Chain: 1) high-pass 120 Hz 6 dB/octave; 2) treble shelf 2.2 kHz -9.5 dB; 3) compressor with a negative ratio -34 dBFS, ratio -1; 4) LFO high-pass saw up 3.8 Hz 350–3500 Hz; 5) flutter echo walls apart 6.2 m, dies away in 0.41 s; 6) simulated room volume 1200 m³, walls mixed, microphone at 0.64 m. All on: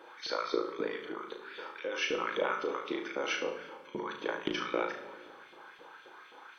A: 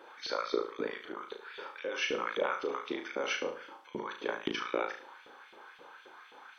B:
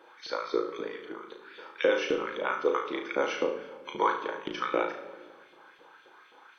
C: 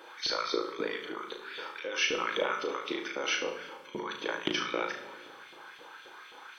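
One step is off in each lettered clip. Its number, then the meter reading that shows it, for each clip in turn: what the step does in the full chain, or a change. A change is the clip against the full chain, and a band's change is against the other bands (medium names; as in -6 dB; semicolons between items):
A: 6, echo-to-direct -2.0 dB to -4.0 dB; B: 3, momentary loudness spread change -4 LU; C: 2, 4 kHz band +5.0 dB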